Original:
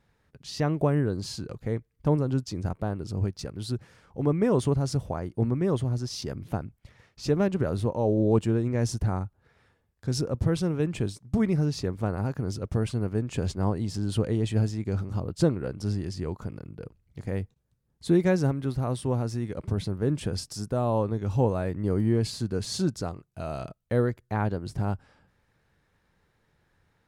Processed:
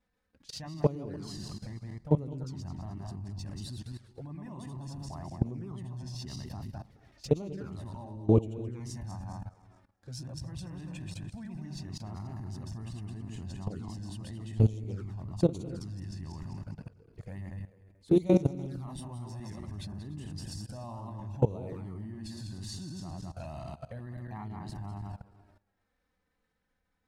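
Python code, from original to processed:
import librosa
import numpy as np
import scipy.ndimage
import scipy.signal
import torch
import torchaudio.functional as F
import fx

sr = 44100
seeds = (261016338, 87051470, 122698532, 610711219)

y = fx.reverse_delay_fb(x, sr, ms=106, feedback_pct=55, wet_db=-3.0)
y = fx.level_steps(y, sr, step_db=19)
y = fx.env_flanger(y, sr, rest_ms=4.0, full_db=-28.5)
y = y + 10.0 ** (-21.0 / 20.0) * np.pad(y, (int(294 * sr / 1000.0), 0))[:len(y)]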